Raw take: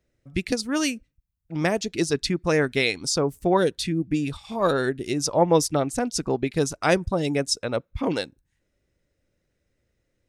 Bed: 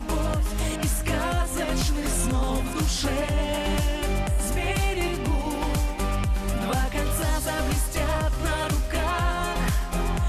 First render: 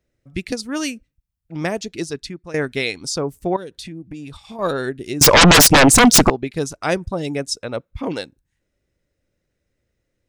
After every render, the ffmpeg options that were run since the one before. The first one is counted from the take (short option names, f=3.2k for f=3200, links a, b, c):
-filter_complex "[0:a]asettb=1/sr,asplit=3[a][b][c];[a]atrim=end=3.564[d];[b]atrim=start=3.56:end=4.59,asetpts=PTS-STARTPTS,afade=t=in:d=0.004:c=qsin,afade=t=out:st=1.026:d=0.004:c=qsin,acompressor=threshold=-31dB:ratio=4:attack=3.2:release=140:knee=1:detection=peak[e];[c]atrim=start=4.586[f];[d][e]acrossfade=d=0.004:c1=hsin:c2=qsin[g];[g][f]acrossfade=d=0.004:c1=qsin:c2=hsin,asettb=1/sr,asplit=3[h][i][j];[h]atrim=end=5.214[k];[i]atrim=start=5.21:end=6.3,asetpts=PTS-STARTPTS,afade=t=in:d=0.004:c=qsin,afade=t=out:st=1.086:d=0.004:c=qsin,aeval=exprs='0.501*sin(PI/2*10*val(0)/0.501)':c=same[l];[j]atrim=start=6.296[m];[k][l]acrossfade=d=0.004:c1=hsin:c2=qsin[n];[n][m]acrossfade=d=0.004:c1=qsin:c2=hsin,asplit=2[o][p];[o]atrim=end=2.54,asetpts=PTS-STARTPTS,afade=t=out:st=1.8:d=0.74:silence=0.177828[q];[p]atrim=start=2.54,asetpts=PTS-STARTPTS,afade=t=in:d=0.004:c=hsin:silence=0.177828[r];[q][r]concat=n=2:v=0:a=1"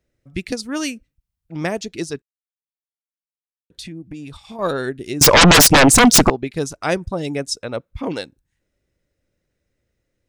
-filter_complex "[0:a]asplit=3[a][b][c];[a]atrim=end=2.22,asetpts=PTS-STARTPTS,afade=t=out:st=2.216:d=0.004:c=hsin[d];[b]atrim=start=2.22:end=3.7,asetpts=PTS-STARTPTS,volume=0[e];[c]atrim=start=3.7,asetpts=PTS-STARTPTS,afade=t=in:d=0.004:c=hsin[f];[d][e][f]concat=n=3:v=0:a=1"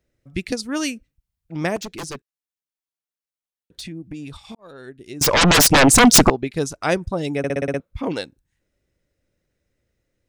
-filter_complex "[0:a]asettb=1/sr,asplit=3[a][b][c];[a]atrim=end=1.764[d];[b]atrim=start=1.76:end=3.88,asetpts=PTS-STARTPTS,afade=t=in:d=0.004:c=qsin,afade=t=out:st=2.116:d=0.004:c=qsin,aeval=exprs='0.0531*(abs(mod(val(0)/0.0531+3,4)-2)-1)':c=same[e];[c]atrim=start=3.876[f];[d][e]acrossfade=d=0.004:c1=hsin:c2=qsin[g];[g][f]acrossfade=d=0.004:c1=qsin:c2=hsin,asplit=9[h][i][j][k][l][m][n][o][p];[h]atrim=end=4.55,asetpts=PTS-STARTPTS,afade=t=out:st=4.546:d=0.004:c=hsin[q];[i]atrim=start=4.55:end=7.442,asetpts=PTS-STARTPTS,afade=t=in:d=1.6[r];[j]atrim=start=7.378:end=7.442[s];[k]atrim=start=7.378:end=7.442[t];[l]atrim=start=7.378:end=7.442[u];[m]atrim=start=7.378:end=7.442[v];[n]atrim=start=7.378:end=7.442[w];[o]atrim=start=7.378:end=7.442[x];[p]atrim=start=7.798[y];[q][r]concat=n=2:v=0:a=1[z];[z][s]acrossfade=d=0.004:c1=hsin:c2=hsin[aa];[aa][t]acrossfade=d=0.004:c1=hsin:c2=hsin[ab];[ab][u]acrossfade=d=0.004:c1=hsin:c2=hsin[ac];[ac][v]acrossfade=d=0.004:c1=hsin:c2=hsin[ad];[ad][w]acrossfade=d=0.004:c1=hsin:c2=hsin[ae];[ae][x]acrossfade=d=0.004:c1=hsin:c2=hsin[af];[af][y]acrossfade=d=0.004:c1=hsin:c2=hsin"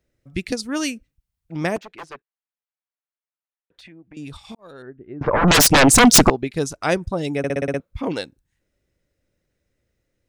-filter_complex "[0:a]asettb=1/sr,asplit=3[a][b][c];[a]atrim=end=1.784[d];[b]atrim=start=1.78:end=4.17,asetpts=PTS-STARTPTS,afade=t=in:d=0.004:c=qsin,afade=t=out:st=2.386:d=0.004:c=qsin,acrossover=split=510 2700:gain=0.178 1 0.1[e][f][g];[e][f][g]amix=inputs=3:normalize=0[h];[c]atrim=start=4.166[i];[d][h]acrossfade=d=0.004:c1=hsin:c2=qsin[j];[j][i]acrossfade=d=0.004:c1=qsin:c2=hsin,asettb=1/sr,asplit=3[k][l][m];[k]atrim=end=4.824[n];[l]atrim=start=4.82:end=5.48,asetpts=PTS-STARTPTS,afade=t=in:d=0.004:c=qsin,afade=t=out:st=0.656:d=0.004:c=qsin,lowpass=f=1.6k:w=0.5412,lowpass=f=1.6k:w=1.3066[o];[m]atrim=start=5.476[p];[n][o]acrossfade=d=0.004:c1=hsin:c2=qsin[q];[q][p]acrossfade=d=0.004:c1=qsin:c2=hsin"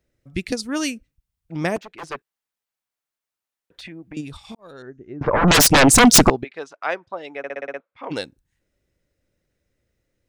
-filter_complex "[0:a]asplit=3[a][b][c];[a]afade=t=out:st=2.02:d=0.02[d];[b]acontrast=78,afade=t=in:st=2.02:d=0.02,afade=t=out:st=4.2:d=0.02[e];[c]afade=t=in:st=4.2:d=0.02[f];[d][e][f]amix=inputs=3:normalize=0,asettb=1/sr,asplit=3[g][h][i];[g]atrim=end=4.774[j];[h]atrim=start=4.77:end=5.17,asetpts=PTS-STARTPTS,afade=t=in:d=0.004:c=qsin,afade=t=out:st=0.396:d=0.004:c=qsin,lowpass=f=6.3k:t=q:w=8[k];[i]atrim=start=5.166[l];[j][k]acrossfade=d=0.004:c1=hsin:c2=qsin[m];[m][l]acrossfade=d=0.004:c1=qsin:c2=hsin,asplit=3[n][o][p];[n]afade=t=out:st=6.43:d=0.02[q];[o]highpass=720,lowpass=2.3k,afade=t=in:st=6.43:d=0.02,afade=t=out:st=8.1:d=0.02[r];[p]afade=t=in:st=8.1:d=0.02[s];[q][r][s]amix=inputs=3:normalize=0"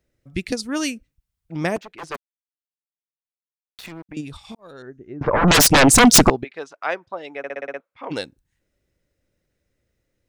-filter_complex "[0:a]asettb=1/sr,asplit=3[a][b][c];[a]atrim=end=2.144[d];[b]atrim=start=2.14:end=4.09,asetpts=PTS-STARTPTS,afade=t=in:d=0.004:c=qsin,afade=t=out:st=1.946:d=0.004:c=qsin,acrusher=bits=5:mix=0:aa=0.5[e];[c]atrim=start=4.086[f];[d][e]acrossfade=d=0.004:c1=hsin:c2=qsin[g];[g][f]acrossfade=d=0.004:c1=qsin:c2=hsin"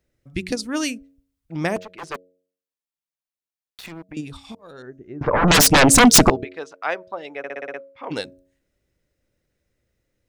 -af "bandreject=f=91.54:t=h:w=4,bandreject=f=183.08:t=h:w=4,bandreject=f=274.62:t=h:w=4,bandreject=f=366.16:t=h:w=4,bandreject=f=457.7:t=h:w=4,bandreject=f=549.24:t=h:w=4,bandreject=f=640.78:t=h:w=4"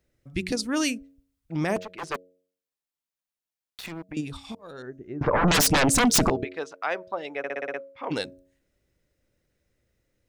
-af "alimiter=limit=-15dB:level=0:latency=1:release=21"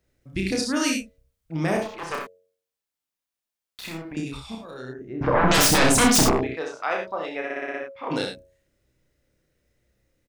-filter_complex "[0:a]asplit=2[a][b];[b]adelay=31,volume=-3.5dB[c];[a][c]amix=inputs=2:normalize=0,aecho=1:1:63|78:0.501|0.355"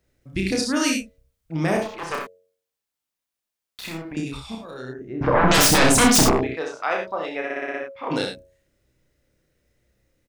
-af "volume=2dB"